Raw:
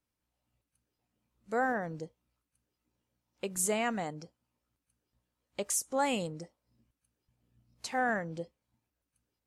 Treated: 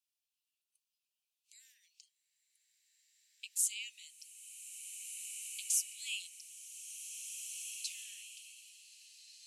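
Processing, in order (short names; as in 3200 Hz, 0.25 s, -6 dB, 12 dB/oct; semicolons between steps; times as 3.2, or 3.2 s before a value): steep high-pass 2500 Hz 72 dB/oct; bloom reverb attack 1.93 s, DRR 5 dB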